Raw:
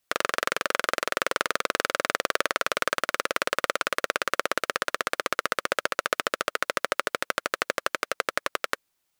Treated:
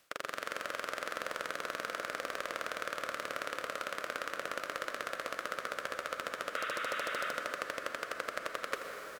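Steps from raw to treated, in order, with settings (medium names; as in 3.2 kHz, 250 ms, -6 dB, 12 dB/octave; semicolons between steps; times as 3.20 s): spectral levelling over time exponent 0.6; band-stop 400 Hz, Q 12; spectral replace 6.59–7.28 s, 1.1–3.9 kHz before; reverse; compression 6:1, threshold -35 dBFS, peak gain reduction 17.5 dB; reverse; delay 82 ms -11.5 dB; on a send at -4 dB: reverberation RT60 5.4 s, pre-delay 113 ms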